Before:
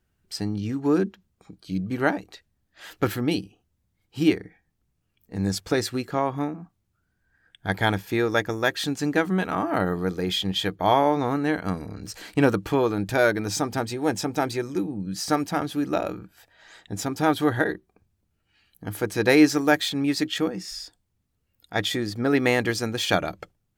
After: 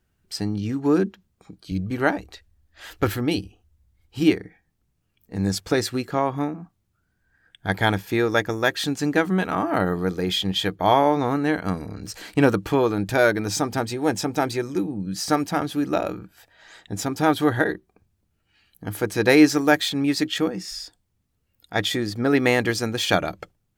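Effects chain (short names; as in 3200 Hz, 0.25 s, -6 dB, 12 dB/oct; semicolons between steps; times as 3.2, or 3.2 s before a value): 1.71–4.23 resonant low shelf 100 Hz +10 dB, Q 1.5; gain +2 dB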